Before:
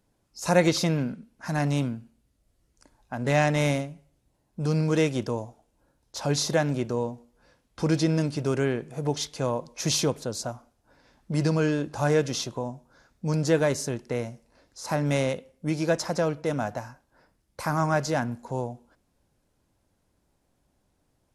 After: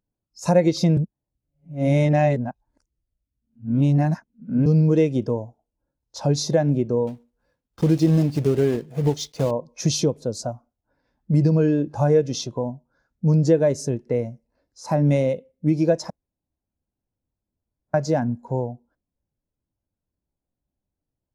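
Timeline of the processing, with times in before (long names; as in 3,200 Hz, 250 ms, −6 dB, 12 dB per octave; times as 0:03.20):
0:00.97–0:04.66: reverse
0:07.07–0:09.52: one scale factor per block 3 bits
0:16.10–0:17.94: fill with room tone
whole clip: dynamic equaliser 1,400 Hz, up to −4 dB, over −44 dBFS, Q 1.8; downward compressor 3 to 1, threshold −25 dBFS; every bin expanded away from the loudest bin 1.5 to 1; level +7 dB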